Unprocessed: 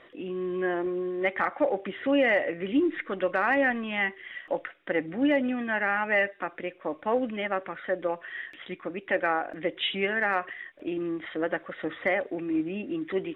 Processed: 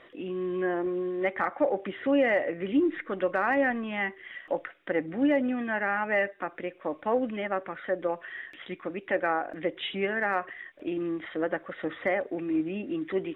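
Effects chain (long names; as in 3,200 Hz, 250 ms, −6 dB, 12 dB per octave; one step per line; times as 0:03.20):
dynamic equaliser 3,100 Hz, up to −6 dB, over −43 dBFS, Q 0.89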